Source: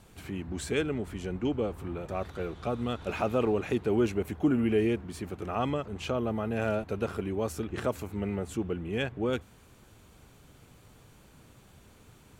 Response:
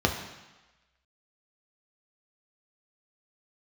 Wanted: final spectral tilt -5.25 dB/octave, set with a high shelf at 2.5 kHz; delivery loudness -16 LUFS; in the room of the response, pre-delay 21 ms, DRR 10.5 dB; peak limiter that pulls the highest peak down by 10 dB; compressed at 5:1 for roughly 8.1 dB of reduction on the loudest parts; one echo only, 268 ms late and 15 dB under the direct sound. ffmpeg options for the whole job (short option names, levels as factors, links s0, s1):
-filter_complex "[0:a]highshelf=f=2500:g=7.5,acompressor=threshold=0.0316:ratio=5,alimiter=level_in=1.5:limit=0.0631:level=0:latency=1,volume=0.668,aecho=1:1:268:0.178,asplit=2[s0][s1];[1:a]atrim=start_sample=2205,adelay=21[s2];[s1][s2]afir=irnorm=-1:irlink=0,volume=0.0668[s3];[s0][s3]amix=inputs=2:normalize=0,volume=11.2"